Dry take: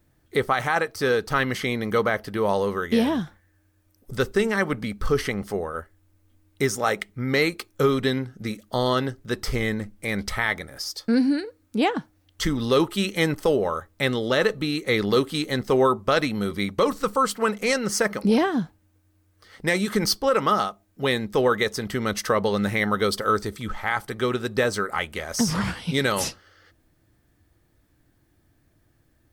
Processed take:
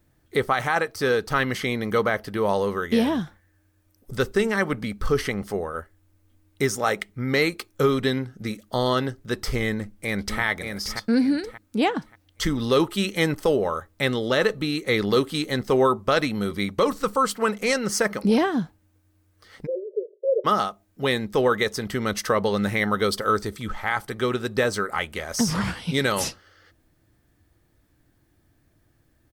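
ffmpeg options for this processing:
-filter_complex "[0:a]asplit=2[a][b];[b]afade=t=in:st=9.71:d=0.01,afade=t=out:st=10.41:d=0.01,aecho=0:1:580|1160|1740|2320:0.501187|0.150356|0.0451069|0.0135321[c];[a][c]amix=inputs=2:normalize=0,asplit=3[d][e][f];[d]afade=t=out:st=19.65:d=0.02[g];[e]asuperpass=centerf=470:order=20:qfactor=2,afade=t=in:st=19.65:d=0.02,afade=t=out:st=20.44:d=0.02[h];[f]afade=t=in:st=20.44:d=0.02[i];[g][h][i]amix=inputs=3:normalize=0"

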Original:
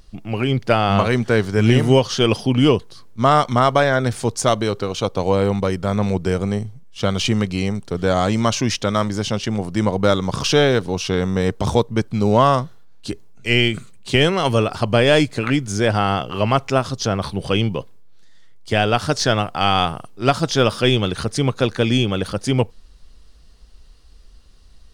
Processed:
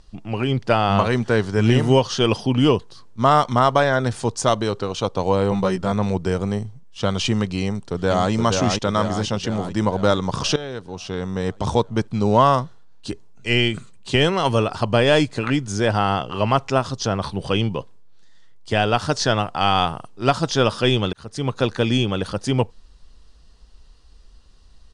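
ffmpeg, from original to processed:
-filter_complex "[0:a]asettb=1/sr,asplit=3[a][b][c];[a]atrim=end=5.504[d];[b]atrim=start=5.5:end=5.92,asetpts=PTS-STARTPTS,afade=t=in:d=0.004:c=qsin,afade=t=out:st=0.416:d=0.004:c=qsin,asplit=2[e][f];[f]adelay=16,volume=-3.5dB[g];[e][g]amix=inputs=2:normalize=0,atrim=end_sample=18522[h];[c]atrim=start=5.916[i];[d][h]acrossfade=d=0.004:c1=hsin:c2=qsin[j];[j][i]acrossfade=d=0.004:c1=qsin:c2=hsin,asplit=2[k][l];[l]afade=t=in:st=7.63:d=0.01,afade=t=out:st=8.31:d=0.01,aecho=0:1:470|940|1410|1880|2350|2820|3290|3760|4230:0.630957|0.378574|0.227145|0.136287|0.0817721|0.0490632|0.0294379|0.0176628|0.0105977[m];[k][m]amix=inputs=2:normalize=0,asplit=3[n][o][p];[n]atrim=end=10.56,asetpts=PTS-STARTPTS,afade=t=out:st=10.556:d=0.004:c=hsin:silence=0.133352[q];[o]atrim=start=10.56:end=21.13,asetpts=PTS-STARTPTS,afade=t=in:d=1.33:silence=0.133352,afade=t=out:st=10.566:d=0.004:c=hsin[r];[p]atrim=start=21.13,asetpts=PTS-STARTPTS,afade=t=in:d=0.46[s];[q][r][s]concat=n=3:v=0:a=1,lowpass=f=9.3k:w=0.5412,lowpass=f=9.3k:w=1.3066,equalizer=f=940:t=o:w=0.44:g=4,bandreject=f=2.2k:w=15,volume=-2dB"

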